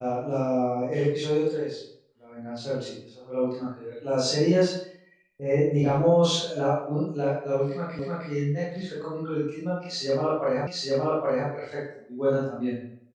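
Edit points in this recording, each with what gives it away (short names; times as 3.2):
7.99 repeat of the last 0.31 s
10.67 repeat of the last 0.82 s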